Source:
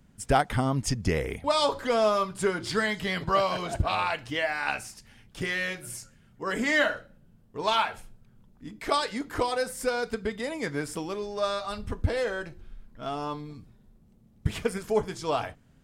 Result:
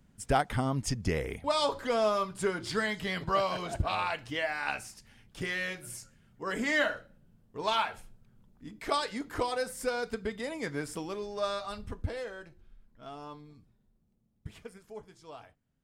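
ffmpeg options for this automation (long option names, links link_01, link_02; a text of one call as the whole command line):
ffmpeg -i in.wav -af "volume=-4dB,afade=type=out:start_time=11.57:duration=0.75:silence=0.421697,afade=type=out:start_time=13.56:duration=1.26:silence=0.398107" out.wav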